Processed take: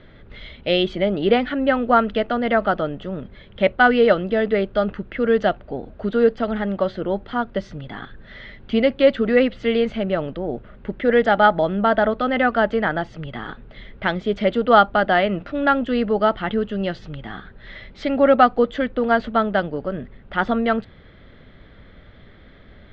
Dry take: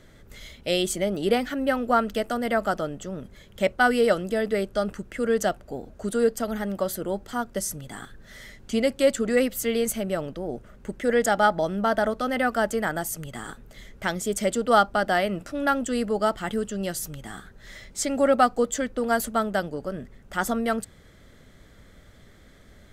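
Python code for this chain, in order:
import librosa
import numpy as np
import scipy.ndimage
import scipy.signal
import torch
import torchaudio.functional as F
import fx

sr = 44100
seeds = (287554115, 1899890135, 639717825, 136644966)

y = scipy.signal.sosfilt(scipy.signal.butter(6, 3800.0, 'lowpass', fs=sr, output='sos'), x)
y = y * 10.0 ** (5.5 / 20.0)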